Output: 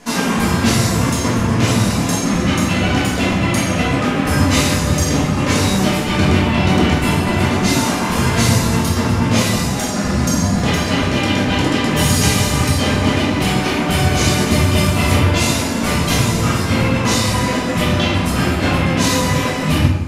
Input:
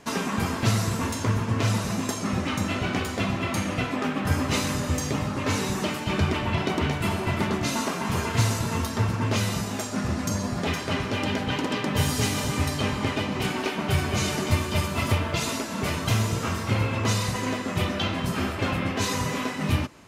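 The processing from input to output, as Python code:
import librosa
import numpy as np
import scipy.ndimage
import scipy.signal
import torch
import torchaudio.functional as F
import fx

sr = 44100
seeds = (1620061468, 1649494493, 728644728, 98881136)

y = scipy.signal.sosfilt(scipy.signal.butter(2, 11000.0, 'lowpass', fs=sr, output='sos'), x)
y = fx.high_shelf(y, sr, hz=8700.0, db=11.5)
y = fx.room_shoebox(y, sr, seeds[0], volume_m3=270.0, walls='mixed', distance_m=1.9)
y = y * librosa.db_to_amplitude(3.5)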